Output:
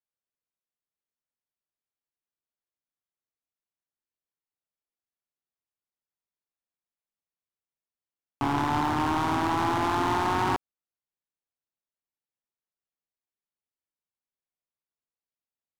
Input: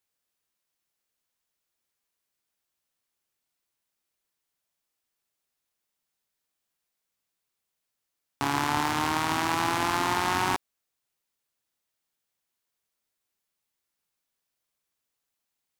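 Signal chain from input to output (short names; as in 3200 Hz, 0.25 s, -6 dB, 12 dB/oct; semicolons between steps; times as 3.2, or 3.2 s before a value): LPF 1200 Hz 6 dB/oct; sample leveller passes 3; gain -4.5 dB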